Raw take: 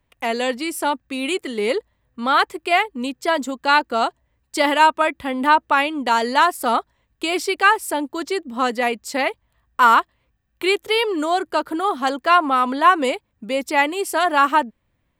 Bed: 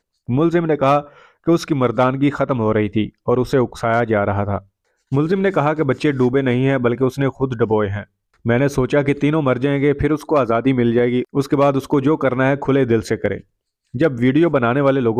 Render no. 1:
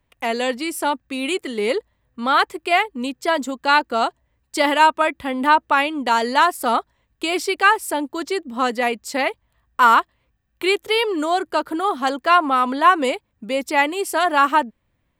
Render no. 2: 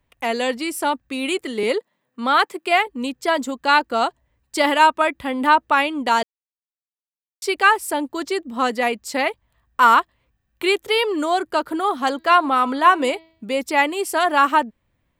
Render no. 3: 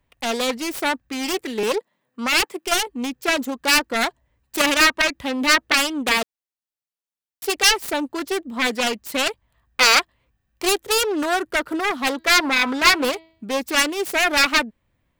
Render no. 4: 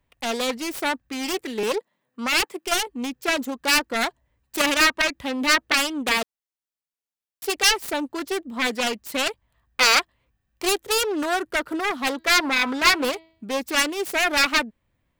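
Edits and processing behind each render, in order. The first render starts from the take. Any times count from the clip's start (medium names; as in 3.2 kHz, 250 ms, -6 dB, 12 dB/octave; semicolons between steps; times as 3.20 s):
no audible change
1.63–2.87 s: steep high-pass 160 Hz; 6.23–7.42 s: mute; 12.11–13.51 s: de-hum 324.4 Hz, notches 18
self-modulated delay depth 0.76 ms; hard clipper -8.5 dBFS, distortion -17 dB
trim -2.5 dB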